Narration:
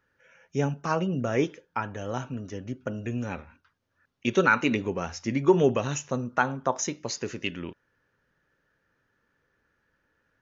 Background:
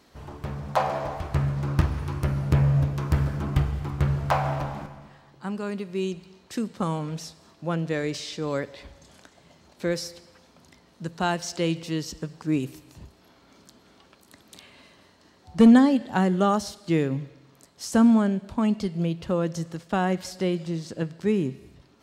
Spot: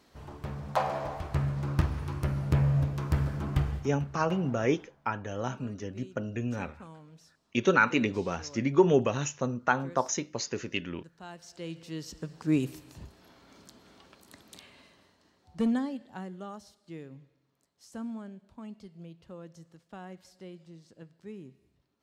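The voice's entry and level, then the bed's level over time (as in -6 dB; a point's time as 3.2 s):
3.30 s, -1.5 dB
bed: 3.76 s -4.5 dB
4 s -21 dB
11.22 s -21 dB
12.52 s -1 dB
14.39 s -1 dB
16.45 s -20.5 dB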